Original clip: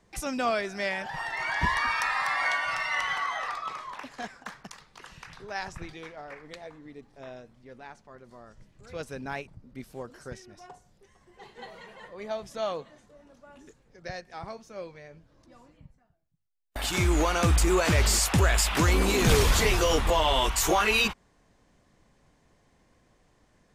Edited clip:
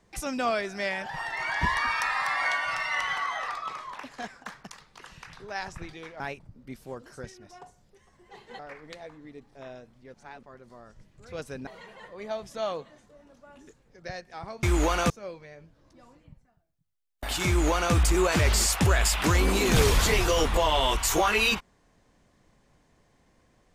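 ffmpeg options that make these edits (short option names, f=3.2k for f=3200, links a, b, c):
-filter_complex "[0:a]asplit=8[a][b][c][d][e][f][g][h];[a]atrim=end=6.202[i];[b]atrim=start=9.278:end=11.672[j];[c]atrim=start=6.198:end=7.752[k];[d]atrim=start=7.748:end=8.042,asetpts=PTS-STARTPTS,areverse[l];[e]atrim=start=8.038:end=9.282[m];[f]atrim=start=11.668:end=14.632[n];[g]atrim=start=16.998:end=17.472[o];[h]atrim=start=14.628[p];[i][j]acrossfade=d=0.004:c1=hsin:c2=hsin[q];[q][k]acrossfade=d=0.004:c1=hsin:c2=hsin[r];[r][l]acrossfade=d=0.004:c1=hsin:c2=hsin[s];[s][m]acrossfade=d=0.004:c1=hsin:c2=hsin[t];[t][n]acrossfade=d=0.004:c1=hsin:c2=hsin[u];[u][o]acrossfade=d=0.004:c1=hsin:c2=hsin[v];[v][p]acrossfade=d=0.004:c1=hsin:c2=hsin"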